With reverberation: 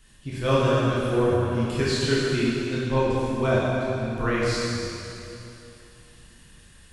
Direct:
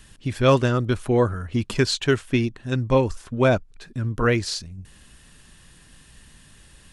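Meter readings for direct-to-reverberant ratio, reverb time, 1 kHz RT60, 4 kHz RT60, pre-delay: -8.0 dB, 2.9 s, 2.9 s, 2.7 s, 6 ms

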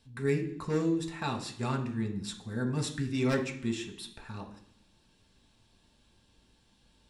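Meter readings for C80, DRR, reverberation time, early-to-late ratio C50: 13.0 dB, 1.5 dB, 0.65 s, 10.0 dB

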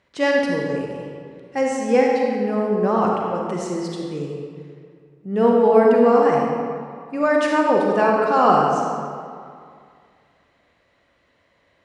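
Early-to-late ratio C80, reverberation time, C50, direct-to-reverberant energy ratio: 1.5 dB, 2.2 s, -0.5 dB, -1.5 dB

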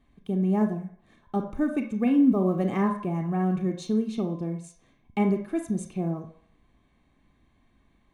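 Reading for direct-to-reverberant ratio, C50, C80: 5.5 dB, 8.5 dB, 13.0 dB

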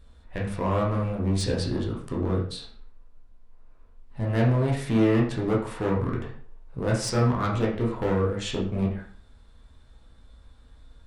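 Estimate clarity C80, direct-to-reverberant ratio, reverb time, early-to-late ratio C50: 10.0 dB, -3.5 dB, 0.50 s, 5.5 dB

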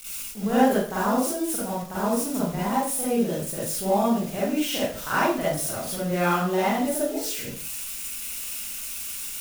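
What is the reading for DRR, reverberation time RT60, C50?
-10.0 dB, 0.45 s, -3.0 dB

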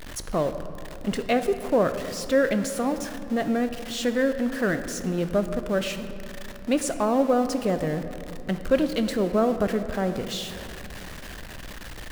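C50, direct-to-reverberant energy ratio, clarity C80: 10.0 dB, 9.0 dB, 11.0 dB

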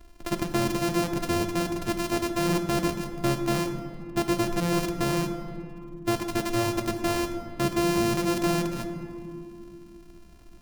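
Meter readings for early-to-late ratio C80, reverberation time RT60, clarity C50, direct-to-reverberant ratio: 8.5 dB, 2.7 s, 7.5 dB, 6.0 dB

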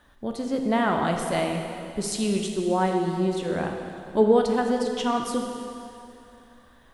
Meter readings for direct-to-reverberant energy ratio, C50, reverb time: 2.5 dB, 4.0 dB, 2.7 s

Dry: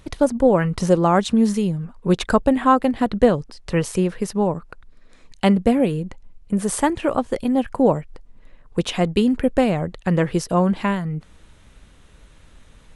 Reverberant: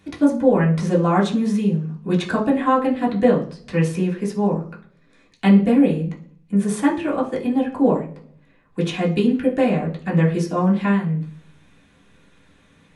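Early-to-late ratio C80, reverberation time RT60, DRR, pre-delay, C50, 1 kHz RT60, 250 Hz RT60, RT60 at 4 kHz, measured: 15.5 dB, 0.45 s, -5.0 dB, 3 ms, 10.5 dB, 0.40 s, 0.70 s, 0.60 s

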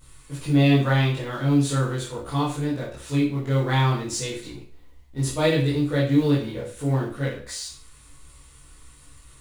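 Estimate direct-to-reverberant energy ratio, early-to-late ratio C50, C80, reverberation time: -8.5 dB, 5.0 dB, 9.5 dB, 0.45 s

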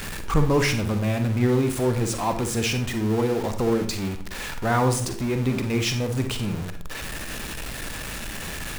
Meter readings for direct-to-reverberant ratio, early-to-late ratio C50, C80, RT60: 6.5 dB, 8.5 dB, 13.5 dB, 0.50 s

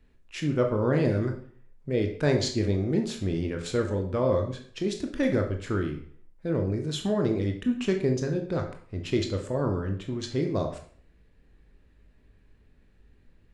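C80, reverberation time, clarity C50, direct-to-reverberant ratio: 12.0 dB, 0.50 s, 8.0 dB, 3.5 dB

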